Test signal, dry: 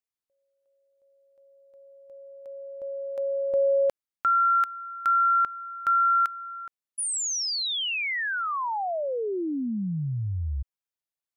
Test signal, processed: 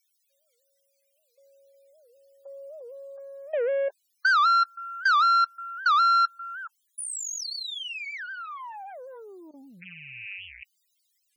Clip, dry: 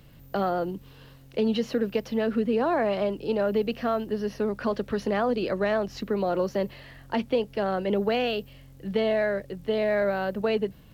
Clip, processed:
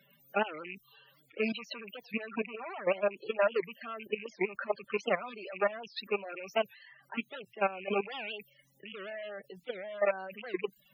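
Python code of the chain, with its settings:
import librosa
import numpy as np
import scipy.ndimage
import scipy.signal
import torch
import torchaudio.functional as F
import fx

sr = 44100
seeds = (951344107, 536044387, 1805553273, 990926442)

y = fx.rattle_buzz(x, sr, strikes_db=-33.0, level_db=-21.0)
y = fx.cheby_harmonics(y, sr, harmonics=(5, 8), levels_db=(-12, -29), full_scale_db=-12.5)
y = fx.dereverb_blind(y, sr, rt60_s=0.51)
y = fx.high_shelf(y, sr, hz=4400.0, db=-5.5)
y = y + 0.78 * np.pad(y, (int(5.1 * sr / 1000.0), 0))[:len(y)]
y = fx.level_steps(y, sr, step_db=17)
y = fx.dmg_noise_colour(y, sr, seeds[0], colour='white', level_db=-62.0)
y = fx.highpass(y, sr, hz=1300.0, slope=6)
y = fx.spec_topn(y, sr, count=32)
y = fx.record_warp(y, sr, rpm=78.0, depth_cents=250.0)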